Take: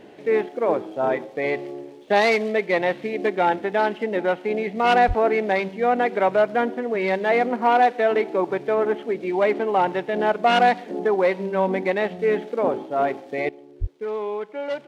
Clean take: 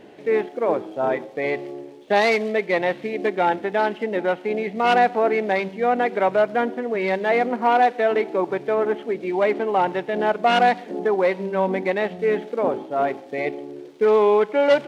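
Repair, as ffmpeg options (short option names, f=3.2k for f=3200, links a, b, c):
-filter_complex "[0:a]asplit=3[a][b][c];[a]afade=t=out:st=5.07:d=0.02[d];[b]highpass=f=140:w=0.5412,highpass=f=140:w=1.3066,afade=t=in:st=5.07:d=0.02,afade=t=out:st=5.19:d=0.02[e];[c]afade=t=in:st=5.19:d=0.02[f];[d][e][f]amix=inputs=3:normalize=0,asplit=3[g][h][i];[g]afade=t=out:st=13.8:d=0.02[j];[h]highpass=f=140:w=0.5412,highpass=f=140:w=1.3066,afade=t=in:st=13.8:d=0.02,afade=t=out:st=13.92:d=0.02[k];[i]afade=t=in:st=13.92:d=0.02[l];[j][k][l]amix=inputs=3:normalize=0,asetnsamples=n=441:p=0,asendcmd='13.49 volume volume 11.5dB',volume=0dB"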